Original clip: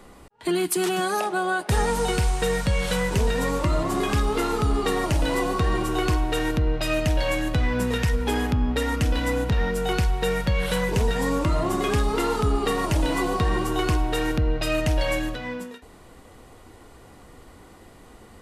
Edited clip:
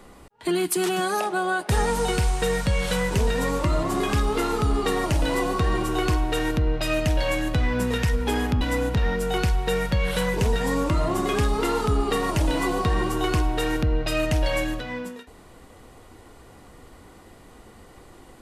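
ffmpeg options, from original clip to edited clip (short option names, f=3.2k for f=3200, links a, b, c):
-filter_complex "[0:a]asplit=2[a][b];[a]atrim=end=8.612[c];[b]atrim=start=9.158[d];[c][d]acrossfade=d=0.004:c1=hsin:c2=hsin"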